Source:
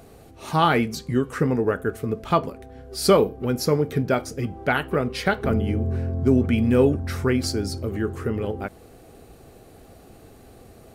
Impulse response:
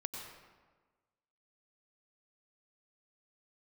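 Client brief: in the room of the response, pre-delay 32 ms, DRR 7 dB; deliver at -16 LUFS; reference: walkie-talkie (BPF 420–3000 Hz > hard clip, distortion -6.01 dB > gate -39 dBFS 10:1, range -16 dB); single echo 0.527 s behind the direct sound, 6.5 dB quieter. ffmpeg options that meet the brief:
-filter_complex "[0:a]aecho=1:1:527:0.473,asplit=2[a][b];[1:a]atrim=start_sample=2205,adelay=32[c];[b][c]afir=irnorm=-1:irlink=0,volume=-6.5dB[d];[a][d]amix=inputs=2:normalize=0,highpass=420,lowpass=3k,asoftclip=type=hard:threshold=-23.5dB,agate=range=-16dB:threshold=-39dB:ratio=10,volume=13.5dB"

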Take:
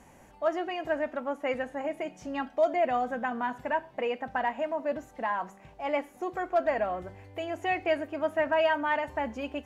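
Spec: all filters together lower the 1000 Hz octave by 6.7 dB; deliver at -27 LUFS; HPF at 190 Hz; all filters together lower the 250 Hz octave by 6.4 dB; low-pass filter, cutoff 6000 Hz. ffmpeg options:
-af "highpass=190,lowpass=6k,equalizer=f=250:t=o:g=-6.5,equalizer=f=1k:t=o:g=-9,volume=8dB"

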